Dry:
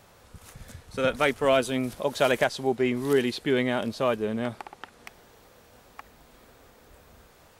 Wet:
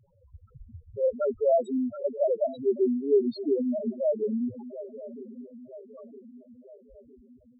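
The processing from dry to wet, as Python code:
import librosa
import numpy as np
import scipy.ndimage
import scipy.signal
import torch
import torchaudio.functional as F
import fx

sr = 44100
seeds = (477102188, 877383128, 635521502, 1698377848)

y = fx.echo_swing(x, sr, ms=961, ratio=3, feedback_pct=50, wet_db=-13.0)
y = fx.spec_topn(y, sr, count=2)
y = y * librosa.db_to_amplitude(3.0)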